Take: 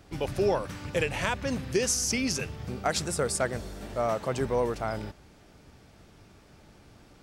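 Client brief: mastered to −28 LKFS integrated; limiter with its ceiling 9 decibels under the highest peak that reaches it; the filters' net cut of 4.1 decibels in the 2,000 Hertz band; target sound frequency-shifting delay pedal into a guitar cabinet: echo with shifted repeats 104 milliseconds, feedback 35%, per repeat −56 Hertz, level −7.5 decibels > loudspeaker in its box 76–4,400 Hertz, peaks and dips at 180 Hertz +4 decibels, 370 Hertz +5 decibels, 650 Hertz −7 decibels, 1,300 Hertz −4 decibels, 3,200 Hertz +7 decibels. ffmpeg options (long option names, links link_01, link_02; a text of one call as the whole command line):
ffmpeg -i in.wav -filter_complex "[0:a]equalizer=frequency=2000:width_type=o:gain=-5.5,alimiter=limit=-24dB:level=0:latency=1,asplit=5[link_01][link_02][link_03][link_04][link_05];[link_02]adelay=104,afreqshift=-56,volume=-7.5dB[link_06];[link_03]adelay=208,afreqshift=-112,volume=-16.6dB[link_07];[link_04]adelay=312,afreqshift=-168,volume=-25.7dB[link_08];[link_05]adelay=416,afreqshift=-224,volume=-34.9dB[link_09];[link_01][link_06][link_07][link_08][link_09]amix=inputs=5:normalize=0,highpass=76,equalizer=frequency=180:width_type=q:width=4:gain=4,equalizer=frequency=370:width_type=q:width=4:gain=5,equalizer=frequency=650:width_type=q:width=4:gain=-7,equalizer=frequency=1300:width_type=q:width=4:gain=-4,equalizer=frequency=3200:width_type=q:width=4:gain=7,lowpass=frequency=4400:width=0.5412,lowpass=frequency=4400:width=1.3066,volume=6dB" out.wav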